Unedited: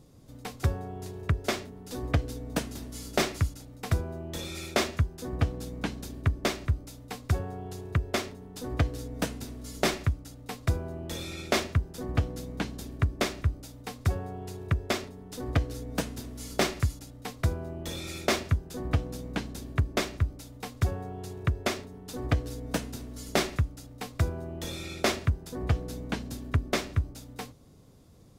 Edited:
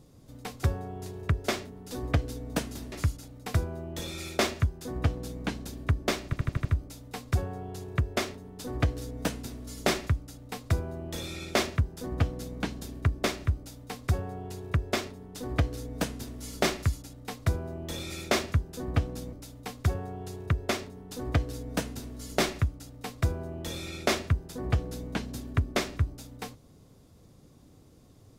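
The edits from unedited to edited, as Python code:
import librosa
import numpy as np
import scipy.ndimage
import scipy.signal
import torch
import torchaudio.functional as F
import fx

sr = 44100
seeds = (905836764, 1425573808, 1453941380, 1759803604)

y = fx.edit(x, sr, fx.cut(start_s=2.92, length_s=0.37),
    fx.stutter(start_s=6.62, slice_s=0.08, count=6),
    fx.cut(start_s=19.3, length_s=1.0), tone=tone)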